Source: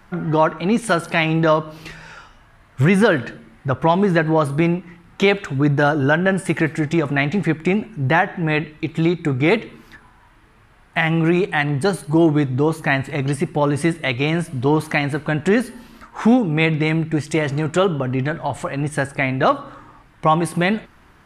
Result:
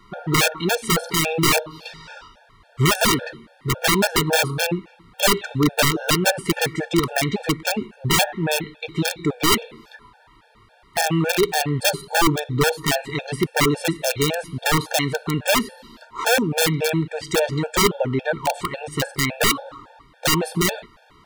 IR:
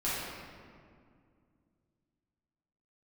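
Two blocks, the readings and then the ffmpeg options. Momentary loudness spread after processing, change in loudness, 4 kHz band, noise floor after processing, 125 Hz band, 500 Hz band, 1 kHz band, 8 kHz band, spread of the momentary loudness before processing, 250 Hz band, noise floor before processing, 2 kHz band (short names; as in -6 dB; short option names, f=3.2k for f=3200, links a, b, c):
8 LU, -1.5 dB, +8.0 dB, -54 dBFS, -5.0 dB, -3.5 dB, -2.0 dB, +13.5 dB, 7 LU, -5.5 dB, -51 dBFS, -1.5 dB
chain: -af "equalizer=f=500:t=o:w=1:g=7,equalizer=f=1k:t=o:w=1:g=5,equalizer=f=4k:t=o:w=1:g=11,aeval=exprs='(mod(1.88*val(0)+1,2)-1)/1.88':c=same,afftfilt=real='re*gt(sin(2*PI*3.6*pts/sr)*(1-2*mod(floor(b*sr/1024/460),2)),0)':imag='im*gt(sin(2*PI*3.6*pts/sr)*(1-2*mod(floor(b*sr/1024/460),2)),0)':win_size=1024:overlap=0.75,volume=-2.5dB"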